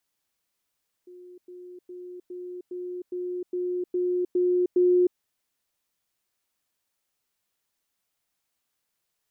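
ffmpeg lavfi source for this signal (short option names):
-f lavfi -i "aevalsrc='pow(10,(-43.5+3*floor(t/0.41))/20)*sin(2*PI*359*t)*clip(min(mod(t,0.41),0.31-mod(t,0.41))/0.005,0,1)':d=4.1:s=44100"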